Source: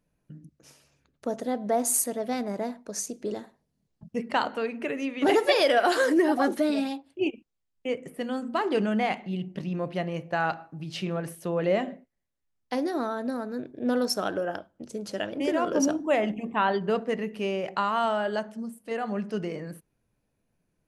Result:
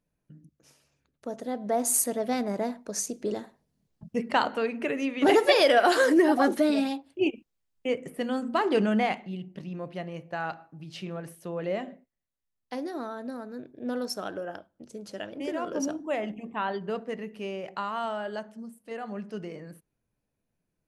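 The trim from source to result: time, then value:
1.27 s -5.5 dB
2.10 s +1.5 dB
8.98 s +1.5 dB
9.42 s -6 dB

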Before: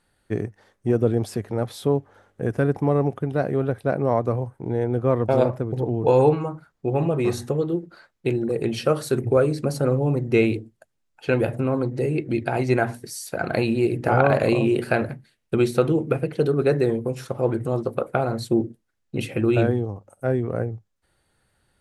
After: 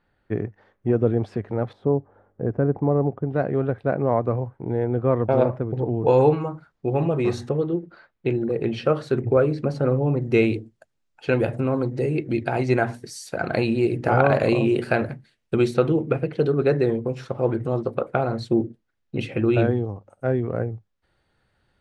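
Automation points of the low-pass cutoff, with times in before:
2.5 kHz
from 1.73 s 1 kHz
from 3.32 s 2.6 kHz
from 6.08 s 5.3 kHz
from 7.49 s 3.2 kHz
from 10.22 s 7.3 kHz
from 15.74 s 4.5 kHz

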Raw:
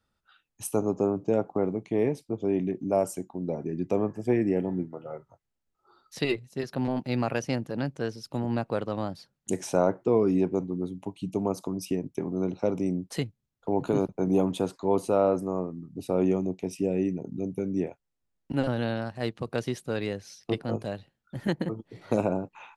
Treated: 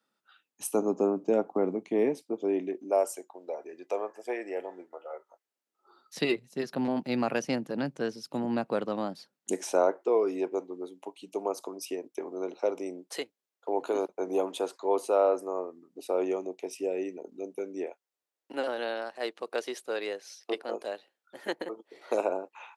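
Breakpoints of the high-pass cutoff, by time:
high-pass 24 dB/octave
2.09 s 220 Hz
3.40 s 500 Hz
5.12 s 500 Hz
6.18 s 170 Hz
8.91 s 170 Hz
10.03 s 380 Hz

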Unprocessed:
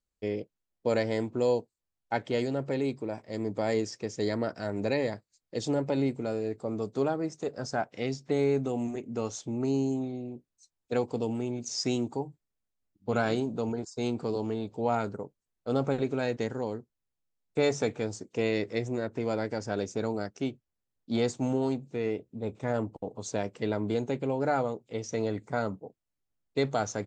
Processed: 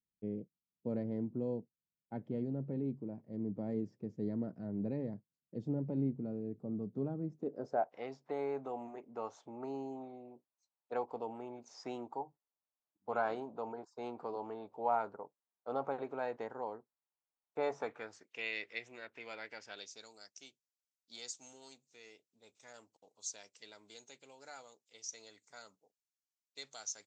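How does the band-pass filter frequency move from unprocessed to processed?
band-pass filter, Q 2
7.30 s 180 Hz
7.97 s 910 Hz
17.77 s 910 Hz
18.35 s 2.5 kHz
19.62 s 2.5 kHz
20.10 s 6.1 kHz

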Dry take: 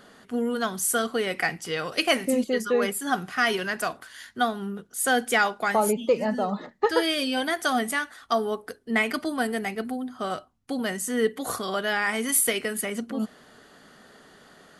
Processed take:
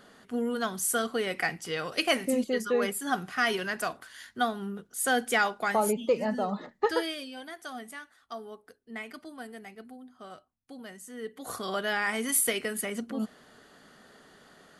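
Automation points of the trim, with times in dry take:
6.91 s -3.5 dB
7.31 s -16 dB
11.21 s -16 dB
11.66 s -3.5 dB

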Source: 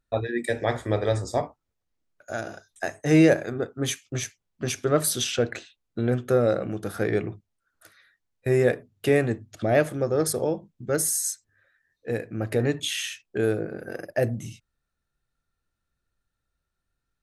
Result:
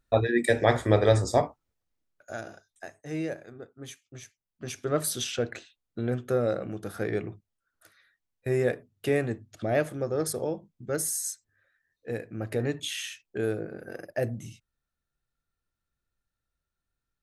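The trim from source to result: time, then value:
1.27 s +3.5 dB
2.46 s -6.5 dB
3.04 s -15.5 dB
4.21 s -15.5 dB
4.95 s -5 dB

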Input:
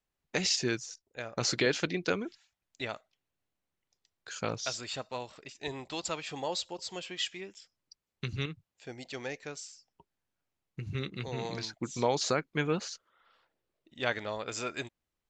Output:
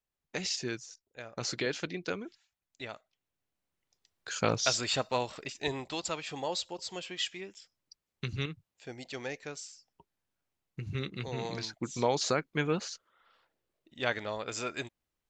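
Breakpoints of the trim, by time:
2.90 s -5 dB
4.76 s +7.5 dB
5.44 s +7.5 dB
6.04 s 0 dB

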